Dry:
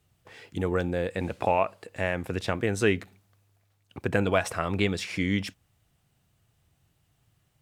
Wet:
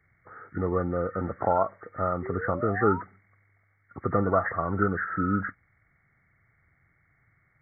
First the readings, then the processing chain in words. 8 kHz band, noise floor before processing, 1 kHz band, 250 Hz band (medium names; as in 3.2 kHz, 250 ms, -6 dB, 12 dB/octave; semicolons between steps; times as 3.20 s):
under -35 dB, -70 dBFS, +4.0 dB, 0.0 dB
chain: knee-point frequency compression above 1.1 kHz 4:1; painted sound rise, 2.22–3.02 s, 360–1000 Hz -37 dBFS